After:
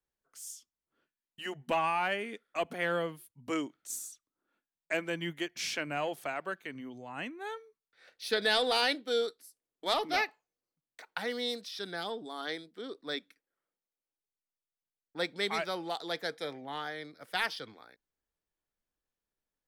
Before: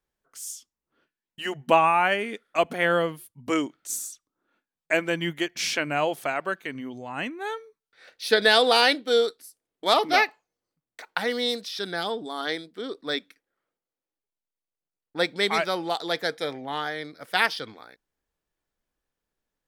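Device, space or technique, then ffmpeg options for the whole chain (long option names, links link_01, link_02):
one-band saturation: -filter_complex "[0:a]acrossover=split=290|2100[link_01][link_02][link_03];[link_02]asoftclip=type=tanh:threshold=-16.5dB[link_04];[link_01][link_04][link_03]amix=inputs=3:normalize=0,volume=-8dB"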